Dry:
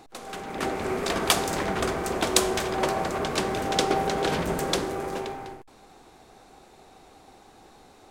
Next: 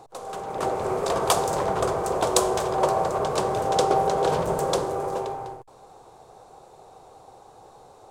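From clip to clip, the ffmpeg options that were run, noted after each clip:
-af "equalizer=f=125:t=o:w=1:g=10,equalizer=f=250:t=o:w=1:g=-7,equalizer=f=500:t=o:w=1:g=11,equalizer=f=1000:t=o:w=1:g=9,equalizer=f=2000:t=o:w=1:g=-6,equalizer=f=8000:t=o:w=1:g=5,volume=0.596"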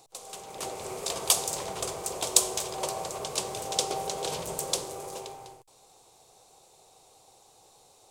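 -af "aexciter=amount=5.3:drive=3.8:freq=2200,volume=0.251"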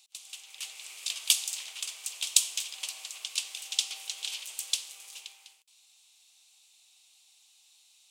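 -af "highpass=f=2800:t=q:w=2.6,volume=0.708"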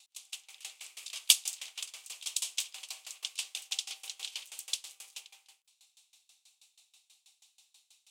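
-af "aeval=exprs='val(0)*pow(10,-23*if(lt(mod(6.2*n/s,1),2*abs(6.2)/1000),1-mod(6.2*n/s,1)/(2*abs(6.2)/1000),(mod(6.2*n/s,1)-2*abs(6.2)/1000)/(1-2*abs(6.2)/1000))/20)':c=same,volume=1.5"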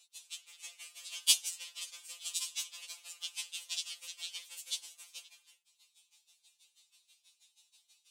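-af "afftfilt=real='re*2.83*eq(mod(b,8),0)':imag='im*2.83*eq(mod(b,8),0)':win_size=2048:overlap=0.75"

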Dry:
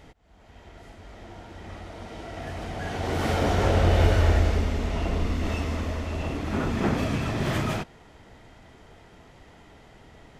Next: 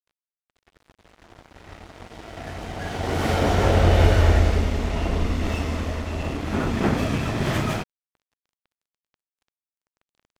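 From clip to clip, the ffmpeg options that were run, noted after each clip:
-af "aeval=exprs='sgn(val(0))*max(abs(val(0))-0.00891,0)':c=same,volume=1.58"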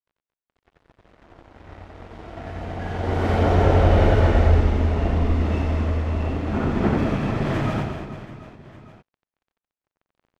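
-filter_complex "[0:a]lowpass=f=1500:p=1,asplit=2[s0][s1];[s1]aecho=0:1:90|225|427.5|731.2|1187:0.631|0.398|0.251|0.158|0.1[s2];[s0][s2]amix=inputs=2:normalize=0"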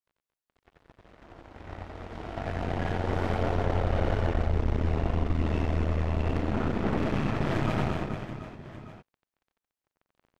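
-af "areverse,acompressor=threshold=0.0562:ratio=6,areverse,aeval=exprs='0.126*(cos(1*acos(clip(val(0)/0.126,-1,1)))-cos(1*PI/2))+0.0282*(cos(4*acos(clip(val(0)/0.126,-1,1)))-cos(4*PI/2))':c=same"

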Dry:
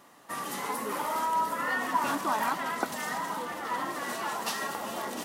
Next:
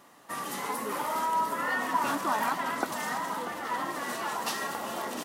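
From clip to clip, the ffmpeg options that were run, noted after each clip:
-filter_complex "[0:a]asplit=2[s0][s1];[s1]adelay=641.4,volume=0.316,highshelf=f=4000:g=-14.4[s2];[s0][s2]amix=inputs=2:normalize=0"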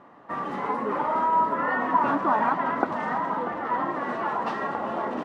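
-af "lowpass=1400,volume=2.24"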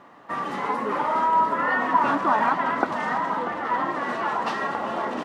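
-af "highshelf=f=2200:g=11"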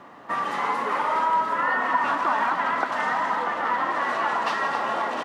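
-filter_complex "[0:a]acrossover=split=520|1300[s0][s1][s2];[s0]acompressor=threshold=0.00562:ratio=4[s3];[s1]acompressor=threshold=0.0316:ratio=4[s4];[s2]acompressor=threshold=0.0316:ratio=4[s5];[s3][s4][s5]amix=inputs=3:normalize=0,asplit=2[s6][s7];[s7]aecho=0:1:172|262.4:0.282|0.355[s8];[s6][s8]amix=inputs=2:normalize=0,volume=1.5"

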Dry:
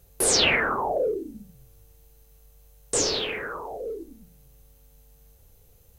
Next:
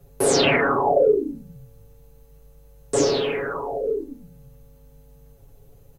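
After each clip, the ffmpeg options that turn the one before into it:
-filter_complex "[0:a]tiltshelf=f=1400:g=7,aecho=1:1:7.2:0.97,acrossover=split=110|1500|3100[s0][s1][s2][s3];[s0]acompressor=threshold=0.00501:ratio=6[s4];[s4][s1][s2][s3]amix=inputs=4:normalize=0"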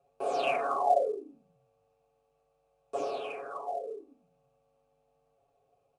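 -filter_complex "[0:a]asplit=3[s0][s1][s2];[s0]bandpass=f=730:t=q:w=8,volume=1[s3];[s1]bandpass=f=1090:t=q:w=8,volume=0.501[s4];[s2]bandpass=f=2440:t=q:w=8,volume=0.355[s5];[s3][s4][s5]amix=inputs=3:normalize=0" -ar 22050 -c:a adpcm_ima_wav

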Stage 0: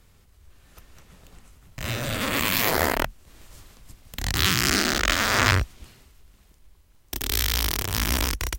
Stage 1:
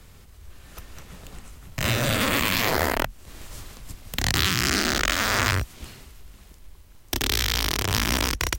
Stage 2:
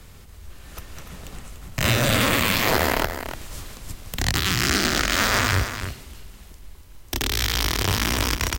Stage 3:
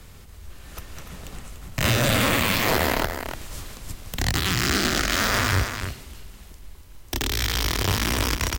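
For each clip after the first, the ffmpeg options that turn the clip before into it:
-filter_complex "[0:a]acrossover=split=89|7400[s0][s1][s2];[s0]acompressor=threshold=0.00891:ratio=4[s3];[s1]acompressor=threshold=0.0398:ratio=4[s4];[s2]acompressor=threshold=0.01:ratio=4[s5];[s3][s4][s5]amix=inputs=3:normalize=0,volume=2.51"
-af "alimiter=limit=0.316:level=0:latency=1:release=18,aecho=1:1:291:0.335,volume=1.5"
-af "asoftclip=type=hard:threshold=0.224"

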